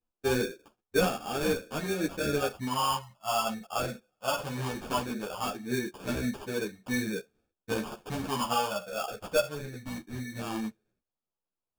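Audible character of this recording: phasing stages 12, 0.19 Hz, lowest notch 330–1400 Hz; aliases and images of a low sample rate 2 kHz, jitter 0%; a shimmering, thickened sound

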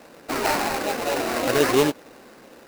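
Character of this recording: aliases and images of a low sample rate 3.3 kHz, jitter 20%

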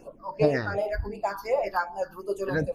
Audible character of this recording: phasing stages 6, 2.7 Hz, lowest notch 590–1700 Hz

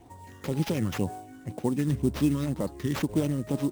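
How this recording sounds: phasing stages 12, 2 Hz, lowest notch 750–2800 Hz; aliases and images of a low sample rate 8.8 kHz, jitter 20%

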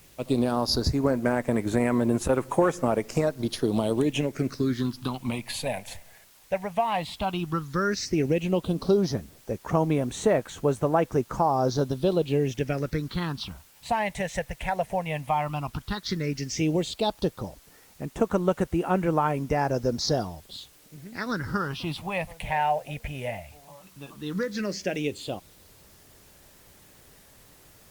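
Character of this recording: phasing stages 6, 0.12 Hz, lowest notch 320–4800 Hz; a quantiser's noise floor 10-bit, dither triangular; Opus

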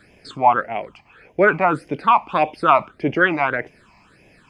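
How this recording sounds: phasing stages 8, 1.7 Hz, lowest notch 450–1300 Hz

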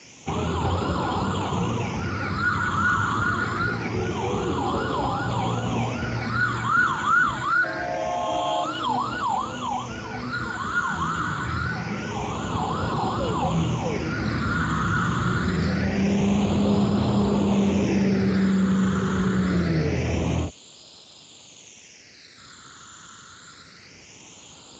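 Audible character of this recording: a quantiser's noise floor 8-bit, dither triangular; phasing stages 8, 0.25 Hz, lowest notch 710–1900 Hz; Speex

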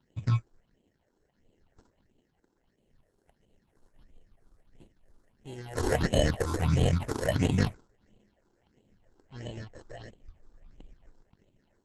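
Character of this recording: aliases and images of a low sample rate 1.2 kHz, jitter 0%; phasing stages 6, 1.5 Hz, lowest notch 160–1500 Hz; Opus

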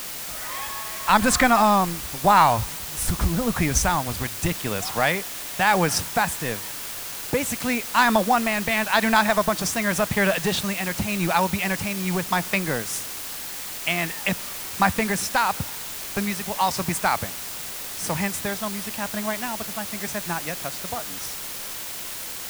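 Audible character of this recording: tremolo triangle 0.9 Hz, depth 50%; a quantiser's noise floor 6-bit, dither triangular

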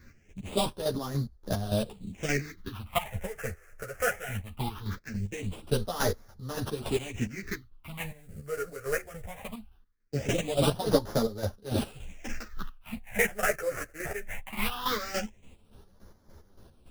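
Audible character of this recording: aliases and images of a low sample rate 4.3 kHz, jitter 20%; phasing stages 6, 0.2 Hz, lowest notch 240–2500 Hz; chopped level 3.5 Hz, depth 65%, duty 40%; a shimmering, thickened sound

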